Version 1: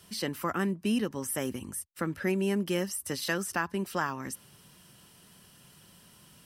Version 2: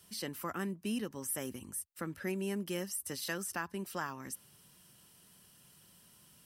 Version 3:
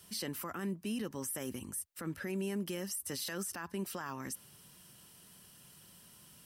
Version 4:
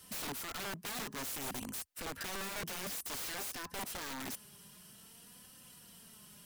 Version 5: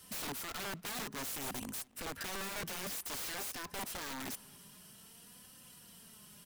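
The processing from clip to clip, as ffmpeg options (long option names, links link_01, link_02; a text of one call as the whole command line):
ffmpeg -i in.wav -af "highshelf=frequency=6600:gain=7.5,volume=-8dB" out.wav
ffmpeg -i in.wav -af "alimiter=level_in=9dB:limit=-24dB:level=0:latency=1:release=31,volume=-9dB,volume=3.5dB" out.wav
ffmpeg -i in.wav -af "flanger=delay=3.8:depth=1.2:regen=33:speed=0.54:shape=triangular,aeval=exprs='(mod(112*val(0)+1,2)-1)/112':channel_layout=same,volume=5.5dB" out.wav
ffmpeg -i in.wav -filter_complex "[0:a]asplit=2[link_01][link_02];[link_02]adelay=281,lowpass=frequency=3700:poles=1,volume=-23.5dB,asplit=2[link_03][link_04];[link_04]adelay=281,lowpass=frequency=3700:poles=1,volume=0.48,asplit=2[link_05][link_06];[link_06]adelay=281,lowpass=frequency=3700:poles=1,volume=0.48[link_07];[link_01][link_03][link_05][link_07]amix=inputs=4:normalize=0" out.wav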